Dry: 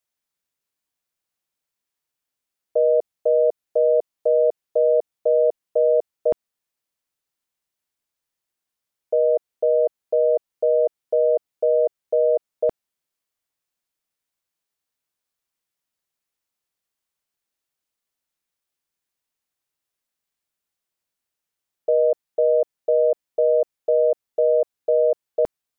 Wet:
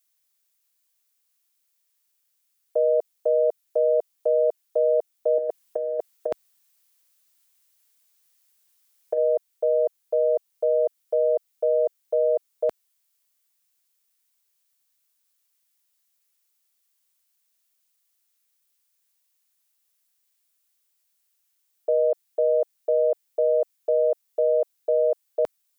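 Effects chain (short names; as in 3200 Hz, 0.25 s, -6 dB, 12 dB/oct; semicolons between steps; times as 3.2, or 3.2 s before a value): tilt +3.5 dB/oct; 5.38–9.18 negative-ratio compressor -24 dBFS, ratio -0.5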